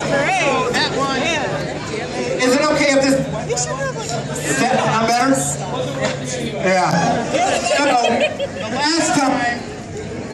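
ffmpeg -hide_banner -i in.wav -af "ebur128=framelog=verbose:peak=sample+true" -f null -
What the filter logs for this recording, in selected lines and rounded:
Integrated loudness:
  I:         -17.5 LUFS
  Threshold: -27.7 LUFS
Loudness range:
  LRA:         1.6 LU
  Threshold: -37.5 LUFS
  LRA low:   -18.4 LUFS
  LRA high:  -16.8 LUFS
Sample peak:
  Peak:       -2.5 dBFS
True peak:
  Peak:       -2.3 dBFS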